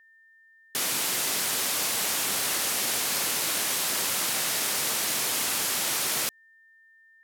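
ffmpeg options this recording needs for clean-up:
-af "bandreject=f=1.8k:w=30"

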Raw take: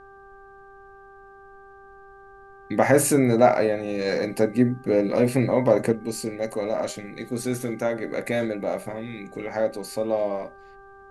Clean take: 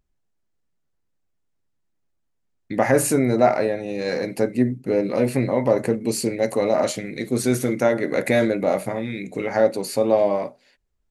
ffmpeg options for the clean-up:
-af "bandreject=f=393.3:t=h:w=4,bandreject=f=786.6:t=h:w=4,bandreject=f=1.1799k:t=h:w=4,bandreject=f=1.5732k:t=h:w=4,agate=range=-21dB:threshold=-40dB,asetnsamples=n=441:p=0,asendcmd='5.92 volume volume 6.5dB',volume=0dB"

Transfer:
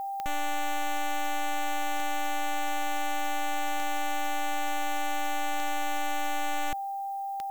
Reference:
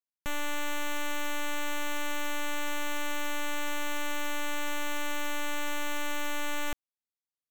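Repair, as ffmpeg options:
-af "adeclick=t=4,bandreject=f=790:w=30,agate=range=-21dB:threshold=-26dB"

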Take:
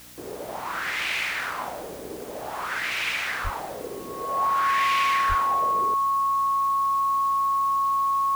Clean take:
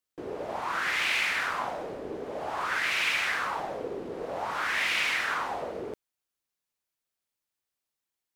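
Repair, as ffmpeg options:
-filter_complex "[0:a]bandreject=f=61.3:t=h:w=4,bandreject=f=122.6:t=h:w=4,bandreject=f=183.9:t=h:w=4,bandreject=f=245.2:t=h:w=4,bandreject=f=306.5:t=h:w=4,bandreject=f=1.1k:w=30,asplit=3[a][b][c];[a]afade=t=out:st=3.43:d=0.02[d];[b]highpass=f=140:w=0.5412,highpass=f=140:w=1.3066,afade=t=in:st=3.43:d=0.02,afade=t=out:st=3.55:d=0.02[e];[c]afade=t=in:st=3.55:d=0.02[f];[d][e][f]amix=inputs=3:normalize=0,asplit=3[g][h][i];[g]afade=t=out:st=5.28:d=0.02[j];[h]highpass=f=140:w=0.5412,highpass=f=140:w=1.3066,afade=t=in:st=5.28:d=0.02,afade=t=out:st=5.4:d=0.02[k];[i]afade=t=in:st=5.4:d=0.02[l];[j][k][l]amix=inputs=3:normalize=0,afwtdn=0.0045"

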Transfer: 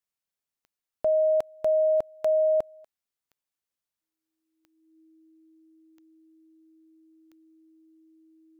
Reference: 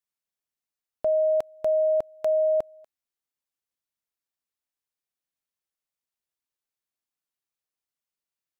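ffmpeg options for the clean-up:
-af "adeclick=t=4,bandreject=f=320:w=30"

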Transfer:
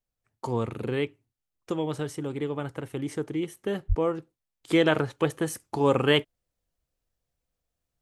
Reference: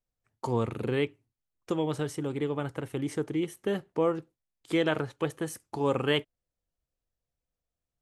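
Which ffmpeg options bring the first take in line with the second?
-filter_complex "[0:a]asplit=3[a][b][c];[a]afade=t=out:st=3.88:d=0.02[d];[b]highpass=f=140:w=0.5412,highpass=f=140:w=1.3066,afade=t=in:st=3.88:d=0.02,afade=t=out:st=4:d=0.02[e];[c]afade=t=in:st=4:d=0.02[f];[d][e][f]amix=inputs=3:normalize=0,asetnsamples=n=441:p=0,asendcmd='4.63 volume volume -5dB',volume=0dB"

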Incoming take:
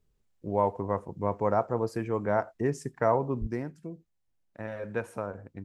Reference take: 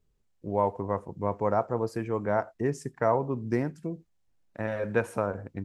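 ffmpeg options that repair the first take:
-filter_complex "[0:a]asplit=3[a][b][c];[a]afade=t=out:st=3.4:d=0.02[d];[b]highpass=f=140:w=0.5412,highpass=f=140:w=1.3066,afade=t=in:st=3.4:d=0.02,afade=t=out:st=3.52:d=0.02[e];[c]afade=t=in:st=3.52:d=0.02[f];[d][e][f]amix=inputs=3:normalize=0,asetnsamples=n=441:p=0,asendcmd='3.47 volume volume 6dB',volume=0dB"

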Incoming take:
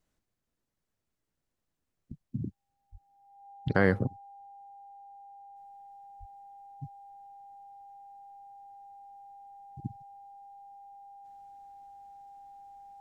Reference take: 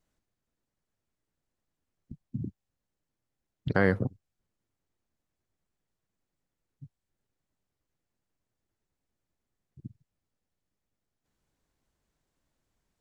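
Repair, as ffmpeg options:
-filter_complex "[0:a]bandreject=f=800:w=30,asplit=3[a][b][c];[a]afade=t=out:st=2.91:d=0.02[d];[b]highpass=f=140:w=0.5412,highpass=f=140:w=1.3066,afade=t=in:st=2.91:d=0.02,afade=t=out:st=3.03:d=0.02[e];[c]afade=t=in:st=3.03:d=0.02[f];[d][e][f]amix=inputs=3:normalize=0,asplit=3[g][h][i];[g]afade=t=out:st=6.19:d=0.02[j];[h]highpass=f=140:w=0.5412,highpass=f=140:w=1.3066,afade=t=in:st=6.19:d=0.02,afade=t=out:st=6.31:d=0.02[k];[i]afade=t=in:st=6.31:d=0.02[l];[j][k][l]amix=inputs=3:normalize=0,asetnsamples=n=441:p=0,asendcmd='5.56 volume volume -5.5dB',volume=0dB"

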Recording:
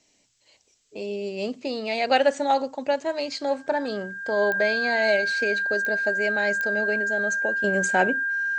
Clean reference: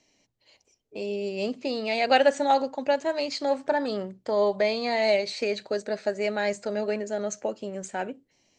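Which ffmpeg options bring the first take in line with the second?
-af "adeclick=t=4,bandreject=f=1.6k:w=30,agate=range=-21dB:threshold=-50dB,asetnsamples=n=441:p=0,asendcmd='7.64 volume volume -9.5dB',volume=0dB"

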